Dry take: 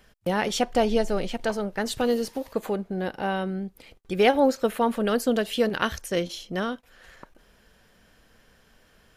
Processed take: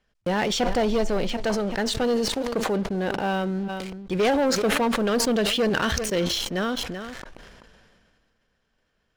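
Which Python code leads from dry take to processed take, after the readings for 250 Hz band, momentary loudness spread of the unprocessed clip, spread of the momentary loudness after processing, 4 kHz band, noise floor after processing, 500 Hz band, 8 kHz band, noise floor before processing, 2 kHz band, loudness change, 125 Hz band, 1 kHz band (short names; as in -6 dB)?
+2.0 dB, 9 LU, 8 LU, +6.0 dB, -72 dBFS, +0.5 dB, +7.0 dB, -60 dBFS, +3.0 dB, +1.5 dB, +4.0 dB, +0.5 dB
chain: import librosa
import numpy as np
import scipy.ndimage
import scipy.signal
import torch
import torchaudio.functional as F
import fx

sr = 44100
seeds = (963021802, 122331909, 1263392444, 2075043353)

p1 = scipy.signal.sosfilt(scipy.signal.butter(2, 6700.0, 'lowpass', fs=sr, output='sos'), x)
p2 = fx.leveller(p1, sr, passes=3)
p3 = p2 + fx.echo_single(p2, sr, ms=385, db=-22.5, dry=0)
p4 = fx.sustainer(p3, sr, db_per_s=27.0)
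y = p4 * 10.0 ** (-8.5 / 20.0)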